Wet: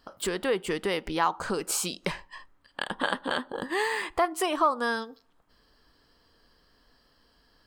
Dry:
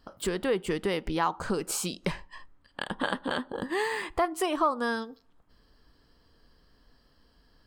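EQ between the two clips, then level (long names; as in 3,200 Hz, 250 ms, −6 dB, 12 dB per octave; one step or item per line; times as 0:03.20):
low-shelf EQ 300 Hz −8.5 dB
+3.0 dB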